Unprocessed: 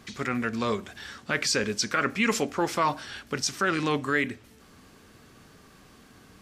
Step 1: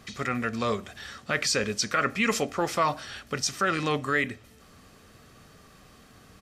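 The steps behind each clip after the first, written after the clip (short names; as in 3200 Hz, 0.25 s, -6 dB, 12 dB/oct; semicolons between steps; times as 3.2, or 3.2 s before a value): comb 1.6 ms, depth 31%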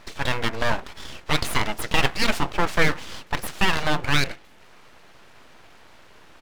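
tone controls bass -8 dB, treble -14 dB; full-wave rectifier; gain +8.5 dB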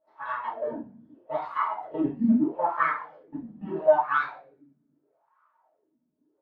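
two-slope reverb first 0.6 s, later 2.4 s, DRR -9 dB; wah 0.78 Hz 220–1200 Hz, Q 4.2; spectral expander 1.5:1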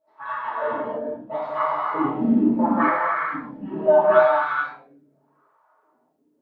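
non-linear reverb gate 0.49 s flat, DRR -4.5 dB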